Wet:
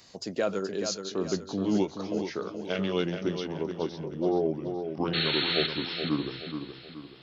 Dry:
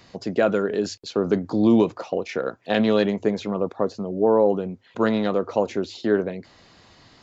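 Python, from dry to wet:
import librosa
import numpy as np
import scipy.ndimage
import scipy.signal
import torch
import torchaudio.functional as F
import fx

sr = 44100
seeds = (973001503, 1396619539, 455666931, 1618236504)

p1 = fx.pitch_glide(x, sr, semitones=-6.5, runs='starting unshifted')
p2 = fx.spec_paint(p1, sr, seeds[0], shape='noise', start_s=5.13, length_s=0.54, low_hz=1200.0, high_hz=4400.0, level_db=-26.0)
p3 = fx.bass_treble(p2, sr, bass_db=-3, treble_db=13)
p4 = p3 + fx.echo_feedback(p3, sr, ms=425, feedback_pct=42, wet_db=-7.5, dry=0)
y = F.gain(torch.from_numpy(p4), -7.0).numpy()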